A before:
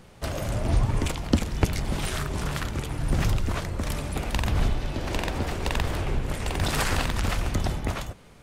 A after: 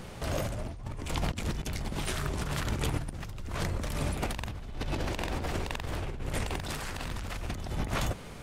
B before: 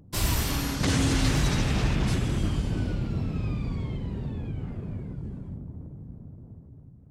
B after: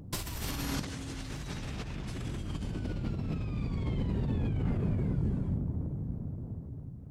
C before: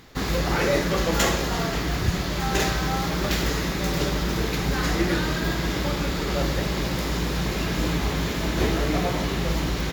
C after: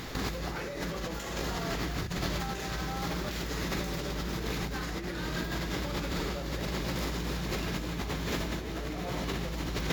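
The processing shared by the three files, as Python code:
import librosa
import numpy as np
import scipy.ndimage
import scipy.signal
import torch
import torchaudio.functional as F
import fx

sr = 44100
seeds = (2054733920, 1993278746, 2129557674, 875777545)

y = fx.over_compress(x, sr, threshold_db=-34.0, ratio=-1.0)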